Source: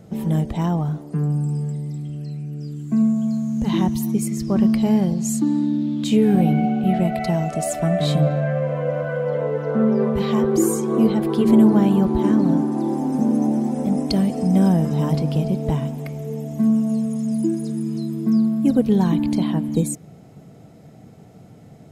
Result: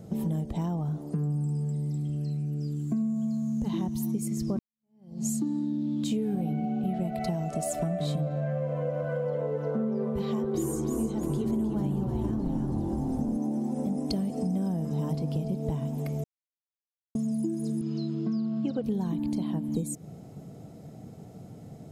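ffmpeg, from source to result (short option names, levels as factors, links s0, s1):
-filter_complex "[0:a]asettb=1/sr,asplit=3[s0][s1][s2];[s0]atrim=end=10.234[s3];[s1]atrim=start=10.23:end=13.37,asetpts=PTS-STARTPTS,afade=t=in:d=0.004:c=qsin,afade=t=out:st=3.136:d=0.004:c=qsin,asplit=6[s4][s5][s6][s7][s8][s9];[s5]adelay=308,afreqshift=-78,volume=0.562[s10];[s6]adelay=616,afreqshift=-156,volume=0.248[s11];[s7]adelay=924,afreqshift=-234,volume=0.108[s12];[s8]adelay=1232,afreqshift=-312,volume=0.0479[s13];[s9]adelay=1540,afreqshift=-390,volume=0.0211[s14];[s4][s10][s11][s12][s13][s14]amix=inputs=6:normalize=0,atrim=end_sample=138474[s15];[s2]atrim=start=13.366[s16];[s3][s15]acrossfade=d=0.004:c1=hsin:c2=qsin[s17];[s17][s16]acrossfade=d=0.004:c1=qsin:c2=hsin,asettb=1/sr,asplit=3[s18][s19][s20];[s18]atrim=end=17.814[s21];[s19]atrim=start=17.81:end=18.84,asetpts=PTS-STARTPTS,afade=t=in:d=0.004:c=qsin,afade=t=out:st=1.026:d=0.004:c=qsin,highpass=110,equalizer=f=250:t=q:w=4:g=-9,equalizer=f=1400:t=q:w=4:g=6,equalizer=f=2900:t=q:w=4:g=8,equalizer=f=4400:t=q:w=4:g=5,lowpass=f=5500:w=0.5412,lowpass=f=5500:w=1.3066[s22];[s20]atrim=start=18.836[s23];[s21][s22]acrossfade=d=0.004:c1=hsin:c2=qsin[s24];[s24][s23]acrossfade=d=0.004:c1=qsin:c2=hsin,asplit=4[s25][s26][s27][s28];[s25]atrim=end=4.59,asetpts=PTS-STARTPTS,afade=t=out:st=4.586:d=0.004:c=hsin[s29];[s26]atrim=start=4.59:end=16.24,asetpts=PTS-STARTPTS,afade=t=in:d=0.68:c=exp,afade=t=out:st=11.646:d=0.004:c=hsin[s30];[s27]atrim=start=16.24:end=17.15,asetpts=PTS-STARTPTS,volume=0[s31];[s28]atrim=start=17.15,asetpts=PTS-STARTPTS,afade=t=in:d=0.004:c=hsin[s32];[s29][s30][s31][s32]concat=n=4:v=0:a=1,equalizer=f=2000:w=0.69:g=-7,acompressor=threshold=0.0447:ratio=6"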